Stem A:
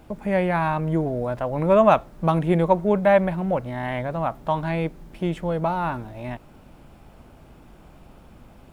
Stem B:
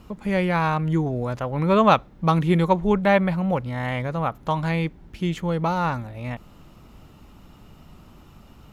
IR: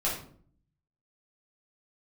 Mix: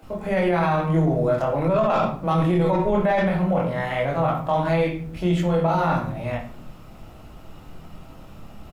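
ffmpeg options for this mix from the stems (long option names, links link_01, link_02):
-filter_complex "[0:a]highpass=frequency=210:width=0.5412,highpass=frequency=210:width=1.3066,volume=-2.5dB,asplit=3[link_01][link_02][link_03];[link_02]volume=-10.5dB[link_04];[1:a]asoftclip=type=tanh:threshold=-11dB,adelay=24,volume=-3dB,asplit=2[link_05][link_06];[link_06]volume=-5.5dB[link_07];[link_03]apad=whole_len=385658[link_08];[link_05][link_08]sidechaincompress=threshold=-28dB:ratio=8:attack=16:release=720[link_09];[2:a]atrim=start_sample=2205[link_10];[link_04][link_07]amix=inputs=2:normalize=0[link_11];[link_11][link_10]afir=irnorm=-1:irlink=0[link_12];[link_01][link_09][link_12]amix=inputs=3:normalize=0,alimiter=limit=-12.5dB:level=0:latency=1:release=14"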